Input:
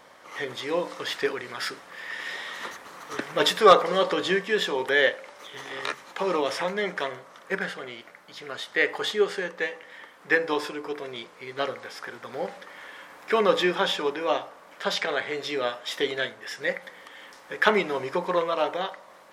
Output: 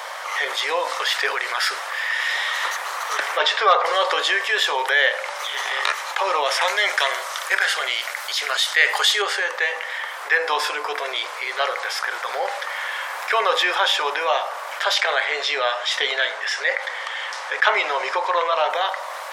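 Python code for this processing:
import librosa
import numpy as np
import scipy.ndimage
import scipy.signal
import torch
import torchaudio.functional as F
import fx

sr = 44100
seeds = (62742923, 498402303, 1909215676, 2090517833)

y = fx.air_absorb(x, sr, metres=130.0, at=(3.37, 3.83), fade=0.02)
y = fx.high_shelf(y, sr, hz=2500.0, db=11.5, at=(6.61, 9.22))
y = fx.lowpass(y, sr, hz=7100.0, slope=12, at=(15.25, 18.7))
y = scipy.signal.sosfilt(scipy.signal.butter(4, 630.0, 'highpass', fs=sr, output='sos'), y)
y = fx.env_flatten(y, sr, amount_pct=50)
y = F.gain(torch.from_numpy(y), 1.0).numpy()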